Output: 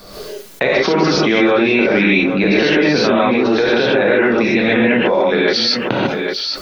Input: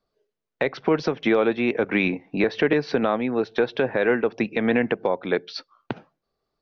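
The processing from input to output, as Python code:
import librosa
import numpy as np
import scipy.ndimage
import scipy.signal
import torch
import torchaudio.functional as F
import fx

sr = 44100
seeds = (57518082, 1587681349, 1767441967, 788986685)

y = fx.high_shelf(x, sr, hz=3400.0, db=10.0)
y = y + 10.0 ** (-19.5 / 20.0) * np.pad(y, (int(803 * sr / 1000.0), 0))[:len(y)]
y = fx.rev_gated(y, sr, seeds[0], gate_ms=170, shape='rising', drr_db=-8.0)
y = fx.env_flatten(y, sr, amount_pct=70)
y = y * librosa.db_to_amplitude(-4.5)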